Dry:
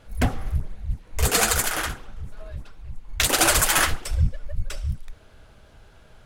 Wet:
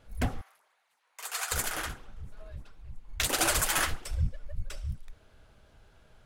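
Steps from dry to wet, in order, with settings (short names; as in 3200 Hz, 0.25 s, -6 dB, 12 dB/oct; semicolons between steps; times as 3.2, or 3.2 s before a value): 0.41–1.52 ladder high-pass 720 Hz, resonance 25%; gain -8 dB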